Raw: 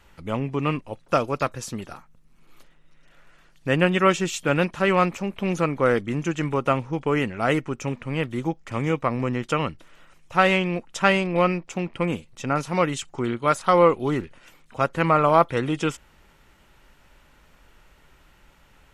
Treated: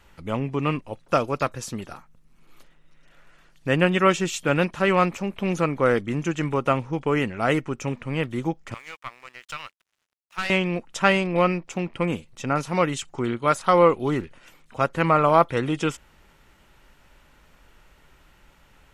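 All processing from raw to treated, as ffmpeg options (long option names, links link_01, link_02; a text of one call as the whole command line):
ffmpeg -i in.wav -filter_complex "[0:a]asettb=1/sr,asplit=3[link_01][link_02][link_03];[link_01]atrim=end=8.744[link_04];[link_02]atrim=start=8.74:end=10.5,asetpts=PTS-STARTPTS,afade=type=in:duration=0.004:curve=qsin,afade=type=out:start_time=1.756:duration=0.004:curve=qsin,highpass=1500,aeval=exprs='sgn(val(0))*max(abs(val(0))-0.00224,0)':channel_layout=same,aeval=exprs='(tanh(10*val(0)+0.75)-tanh(0.75))/10':channel_layout=same[link_05];[link_03]atrim=start=10.496[link_06];[link_04][link_05]acrossfade=duration=0.004:curve1=hsin:curve2=qsin[link_07];[link_07][link_06]acrossfade=duration=0.004:curve1=qsin:curve2=hsin" out.wav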